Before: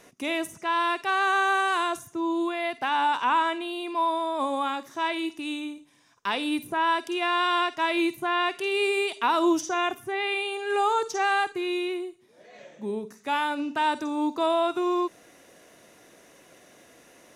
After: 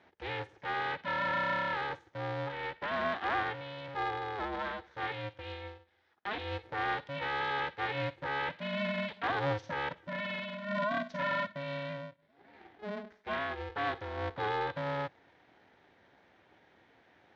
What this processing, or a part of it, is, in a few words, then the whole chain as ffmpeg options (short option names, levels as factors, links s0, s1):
ring modulator pedal into a guitar cabinet: -af "aeval=exprs='val(0)*sgn(sin(2*PI*210*n/s))':c=same,highpass=95,equalizer=f=140:t=q:w=4:g=-5,equalizer=f=490:t=q:w=4:g=-3,equalizer=f=1200:t=q:w=4:g=-5,equalizer=f=1700:t=q:w=4:g=3,equalizer=f=2700:t=q:w=4:g=-6,lowpass=f=3500:w=0.5412,lowpass=f=3500:w=1.3066,volume=0.422"